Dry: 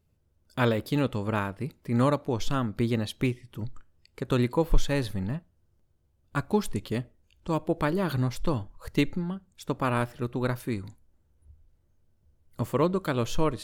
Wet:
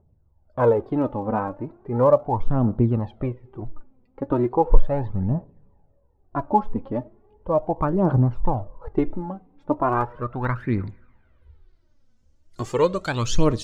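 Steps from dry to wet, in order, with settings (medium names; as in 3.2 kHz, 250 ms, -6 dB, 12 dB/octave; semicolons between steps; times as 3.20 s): low-pass sweep 820 Hz -> 6.4 kHz, 9.72–12.21 s; two-slope reverb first 0.4 s, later 2.6 s, from -16 dB, DRR 20 dB; phaser 0.37 Hz, delay 4.1 ms, feedback 63%; trim +1.5 dB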